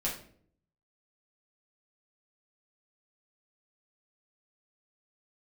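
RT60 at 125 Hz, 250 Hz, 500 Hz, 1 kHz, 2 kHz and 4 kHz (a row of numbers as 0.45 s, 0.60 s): 0.90 s, 0.80 s, 0.65 s, 0.45 s, 0.45 s, 0.40 s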